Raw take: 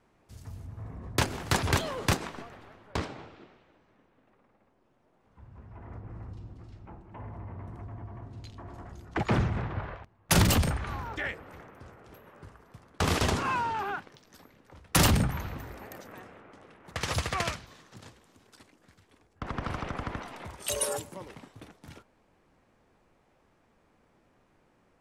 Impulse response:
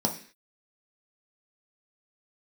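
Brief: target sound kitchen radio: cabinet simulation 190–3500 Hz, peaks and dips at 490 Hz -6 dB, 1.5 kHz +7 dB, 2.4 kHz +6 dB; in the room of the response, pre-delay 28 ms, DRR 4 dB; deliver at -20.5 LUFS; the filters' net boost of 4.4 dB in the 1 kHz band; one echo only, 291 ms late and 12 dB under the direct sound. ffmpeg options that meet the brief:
-filter_complex "[0:a]equalizer=f=1000:t=o:g=4,aecho=1:1:291:0.251,asplit=2[s0][s1];[1:a]atrim=start_sample=2205,adelay=28[s2];[s1][s2]afir=irnorm=-1:irlink=0,volume=0.224[s3];[s0][s3]amix=inputs=2:normalize=0,highpass=190,equalizer=f=490:t=q:w=4:g=-6,equalizer=f=1500:t=q:w=4:g=7,equalizer=f=2400:t=q:w=4:g=6,lowpass=f=3500:w=0.5412,lowpass=f=3500:w=1.3066,volume=2.24"

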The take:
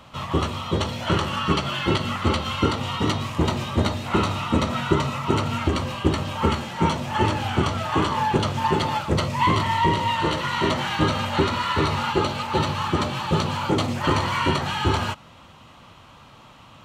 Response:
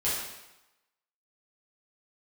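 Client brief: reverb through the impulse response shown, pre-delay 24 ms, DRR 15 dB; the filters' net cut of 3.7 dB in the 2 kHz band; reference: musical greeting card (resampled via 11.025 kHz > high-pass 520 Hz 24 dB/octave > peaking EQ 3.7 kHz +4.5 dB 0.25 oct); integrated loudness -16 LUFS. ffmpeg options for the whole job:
-filter_complex "[0:a]equalizer=f=2000:t=o:g=-5,asplit=2[s0][s1];[1:a]atrim=start_sample=2205,adelay=24[s2];[s1][s2]afir=irnorm=-1:irlink=0,volume=0.0631[s3];[s0][s3]amix=inputs=2:normalize=0,aresample=11025,aresample=44100,highpass=f=520:w=0.5412,highpass=f=520:w=1.3066,equalizer=f=3700:t=o:w=0.25:g=4.5,volume=3.55"

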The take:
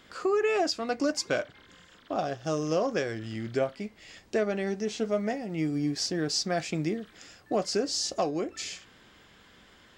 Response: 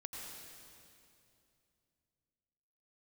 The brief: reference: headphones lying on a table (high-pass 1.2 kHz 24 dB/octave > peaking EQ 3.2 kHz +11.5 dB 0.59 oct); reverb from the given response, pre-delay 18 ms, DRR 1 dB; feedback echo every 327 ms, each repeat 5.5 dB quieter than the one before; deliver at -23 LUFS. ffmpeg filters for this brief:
-filter_complex "[0:a]aecho=1:1:327|654|981|1308|1635|1962|2289:0.531|0.281|0.149|0.079|0.0419|0.0222|0.0118,asplit=2[s0][s1];[1:a]atrim=start_sample=2205,adelay=18[s2];[s1][s2]afir=irnorm=-1:irlink=0,volume=1.12[s3];[s0][s3]amix=inputs=2:normalize=0,highpass=f=1200:w=0.5412,highpass=f=1200:w=1.3066,equalizer=f=3200:t=o:w=0.59:g=11.5,volume=2.24"

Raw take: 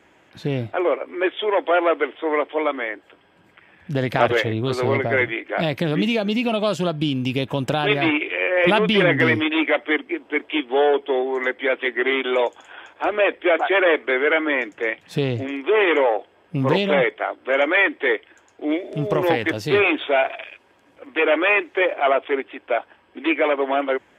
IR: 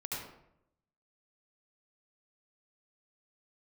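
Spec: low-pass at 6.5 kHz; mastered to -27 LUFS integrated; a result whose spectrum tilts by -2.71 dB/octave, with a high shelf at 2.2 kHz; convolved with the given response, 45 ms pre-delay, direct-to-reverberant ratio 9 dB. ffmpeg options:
-filter_complex "[0:a]lowpass=6500,highshelf=f=2200:g=6.5,asplit=2[s0][s1];[1:a]atrim=start_sample=2205,adelay=45[s2];[s1][s2]afir=irnorm=-1:irlink=0,volume=0.282[s3];[s0][s3]amix=inputs=2:normalize=0,volume=0.376"

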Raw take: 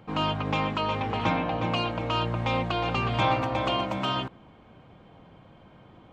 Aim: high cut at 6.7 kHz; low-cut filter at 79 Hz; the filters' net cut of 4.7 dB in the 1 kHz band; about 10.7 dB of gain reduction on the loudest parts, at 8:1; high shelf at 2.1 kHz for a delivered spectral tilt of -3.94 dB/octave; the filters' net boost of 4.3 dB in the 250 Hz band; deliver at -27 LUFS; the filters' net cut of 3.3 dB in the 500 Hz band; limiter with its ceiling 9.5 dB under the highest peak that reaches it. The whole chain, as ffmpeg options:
-af "highpass=79,lowpass=6700,equalizer=f=250:t=o:g=7,equalizer=f=500:t=o:g=-4.5,equalizer=f=1000:t=o:g=-6.5,highshelf=f=2100:g=7,acompressor=threshold=0.0251:ratio=8,volume=3.98,alimiter=limit=0.119:level=0:latency=1"

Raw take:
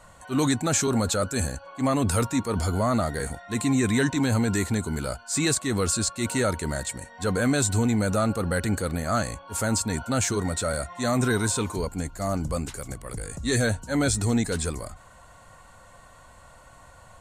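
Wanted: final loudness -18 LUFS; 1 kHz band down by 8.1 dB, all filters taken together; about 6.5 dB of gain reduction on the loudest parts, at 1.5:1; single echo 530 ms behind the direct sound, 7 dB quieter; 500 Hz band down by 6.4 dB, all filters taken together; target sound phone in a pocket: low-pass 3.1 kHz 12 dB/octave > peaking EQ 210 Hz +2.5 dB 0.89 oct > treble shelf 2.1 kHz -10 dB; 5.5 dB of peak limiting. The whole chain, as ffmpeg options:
-af "equalizer=f=500:t=o:g=-6,equalizer=f=1000:t=o:g=-6.5,acompressor=threshold=0.0112:ratio=1.5,alimiter=limit=0.0631:level=0:latency=1,lowpass=3100,equalizer=f=210:t=o:w=0.89:g=2.5,highshelf=f=2100:g=-10,aecho=1:1:530:0.447,volume=6.31"

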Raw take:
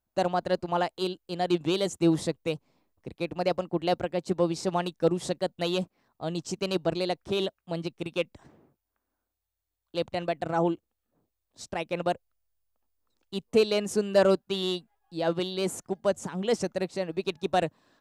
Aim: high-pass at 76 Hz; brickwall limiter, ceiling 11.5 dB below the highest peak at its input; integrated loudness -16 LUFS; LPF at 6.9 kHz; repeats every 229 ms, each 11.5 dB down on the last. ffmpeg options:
-af "highpass=76,lowpass=6900,alimiter=limit=0.075:level=0:latency=1,aecho=1:1:229|458|687:0.266|0.0718|0.0194,volume=7.94"

